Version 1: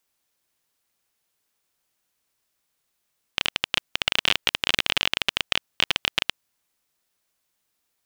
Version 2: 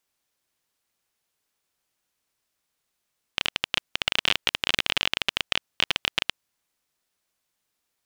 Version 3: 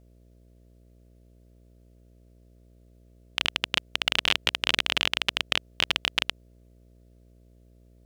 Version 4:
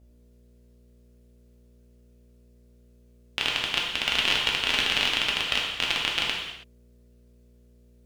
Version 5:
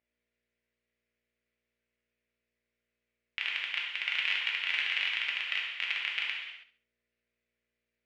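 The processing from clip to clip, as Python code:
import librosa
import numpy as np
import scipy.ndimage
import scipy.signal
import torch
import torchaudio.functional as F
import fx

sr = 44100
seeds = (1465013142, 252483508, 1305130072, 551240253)

y1 = fx.high_shelf(x, sr, hz=12000.0, db=-5.0)
y1 = F.gain(torch.from_numpy(y1), -1.5).numpy()
y2 = fx.dmg_buzz(y1, sr, base_hz=60.0, harmonics=11, level_db=-56.0, tilt_db=-6, odd_only=False)
y3 = fx.rev_gated(y2, sr, seeds[0], gate_ms=350, shape='falling', drr_db=-3.0)
y3 = F.gain(torch.from_numpy(y3), -3.0).numpy()
y4 = fx.bandpass_q(y3, sr, hz=2100.0, q=3.6)
y4 = fx.echo_feedback(y4, sr, ms=68, feedback_pct=35, wet_db=-12.5)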